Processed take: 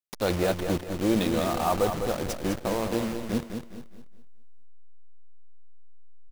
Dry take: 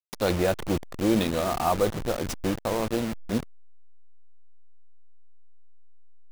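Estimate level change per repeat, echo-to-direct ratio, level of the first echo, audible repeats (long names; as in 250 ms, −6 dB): repeats not evenly spaced, −6.0 dB, −7.0 dB, 3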